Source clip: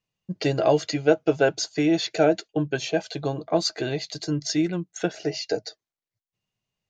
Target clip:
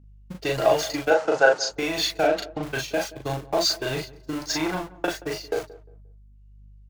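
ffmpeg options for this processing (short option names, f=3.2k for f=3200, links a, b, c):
-filter_complex "[0:a]aeval=exprs='val(0)+0.5*0.0335*sgn(val(0))':c=same,agate=range=-57dB:threshold=-25dB:ratio=16:detection=peak,asettb=1/sr,asplit=3[a][b][c];[a]atrim=end=4.384[d];[b]atrim=start=4.38:end=5.05,asetpts=PTS-STARTPTS,afade=t=in:d=0.004:c=qsin,afade=t=out:st=0.666:d=0.004:c=qsin,equalizer=f=830:w=0.79:g=9.5[e];[c]atrim=start=5.046[f];[d][e]acrossfade=d=0.004:c1=hsin:c2=qsin[g];[g][f]acrossfade=d=0.004:c1=qsin:c2=hsin,acrossover=split=570|930[h][i][j];[h]acompressor=threshold=-32dB:ratio=6[k];[k][i][j]amix=inputs=3:normalize=0,aeval=exprs='val(0)+0.002*(sin(2*PI*50*n/s)+sin(2*PI*2*50*n/s)/2+sin(2*PI*3*50*n/s)/3+sin(2*PI*4*50*n/s)/4+sin(2*PI*5*50*n/s)/5)':c=same,asettb=1/sr,asplit=3[l][m][n];[l]atrim=end=2.234[o];[m]atrim=start=2.23:end=2.63,asetpts=PTS-STARTPTS,afade=t=in:d=0.004:c=qsin,afade=t=out:st=0.396:d=0.004:c=qsin,adynamicsmooth=sensitivity=3.5:basefreq=2.7k[p];[n]atrim=start=2.626[q];[o][p]acrossfade=d=0.004:c1=hsin:c2=qsin[r];[r][q]acrossfade=d=0.004:c1=qsin:c2=hsin,aphaser=in_gain=1:out_gain=1:delay=3.9:decay=0.33:speed=1.5:type=triangular,asettb=1/sr,asplit=3[s][t][u];[s]atrim=end=1.104[v];[t]atrim=start=1.1:end=1.7,asetpts=PTS-STARTPTS,afade=t=in:d=0.004:c=qsin,afade=t=out:st=0.596:d=0.004:c=qsin,highpass=220,equalizer=f=520:t=q:w=4:g=8,equalizer=f=820:t=q:w=4:g=7,equalizer=f=1.4k:t=q:w=4:g=6,equalizer=f=2.3k:t=q:w=4:g=-5,equalizer=f=3.4k:t=q:w=4:g=-6,lowpass=f=7.5k:w=0.5412,lowpass=f=7.5k:w=1.3066[w];[u]atrim=start=1.696[x];[v][w]acrossfade=d=0.004:c1=hsin:c2=qsin[y];[y][x]acrossfade=d=0.004:c1=qsin:c2=hsin,asplit=2[z][aa];[aa]adelay=38,volume=-2.5dB[ab];[z][ab]amix=inputs=2:normalize=0,asplit=2[ac][ad];[ad]adelay=176,lowpass=f=1k:p=1,volume=-18dB,asplit=2[ae][af];[af]adelay=176,lowpass=f=1k:p=1,volume=0.3,asplit=2[ag][ah];[ah]adelay=176,lowpass=f=1k:p=1,volume=0.3[ai];[ac][ae][ag][ai]amix=inputs=4:normalize=0"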